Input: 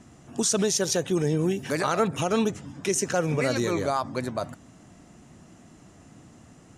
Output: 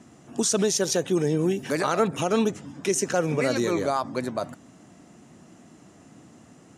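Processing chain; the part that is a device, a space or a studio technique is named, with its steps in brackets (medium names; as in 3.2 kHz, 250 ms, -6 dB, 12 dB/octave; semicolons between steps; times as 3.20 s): filter by subtraction (in parallel: low-pass 260 Hz 12 dB/octave + polarity flip)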